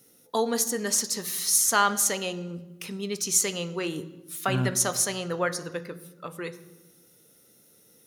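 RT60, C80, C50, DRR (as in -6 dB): 1.1 s, 17.0 dB, 15.0 dB, 10.0 dB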